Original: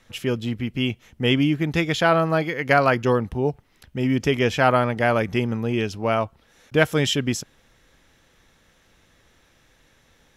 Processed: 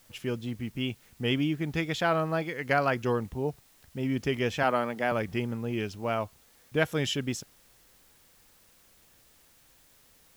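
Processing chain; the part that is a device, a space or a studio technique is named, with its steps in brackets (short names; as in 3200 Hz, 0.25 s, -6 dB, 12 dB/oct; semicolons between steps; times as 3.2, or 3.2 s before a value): plain cassette with noise reduction switched in (mismatched tape noise reduction decoder only; wow and flutter; white noise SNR 30 dB); 4.63–5.12 HPF 160 Hz 24 dB/oct; gain -8 dB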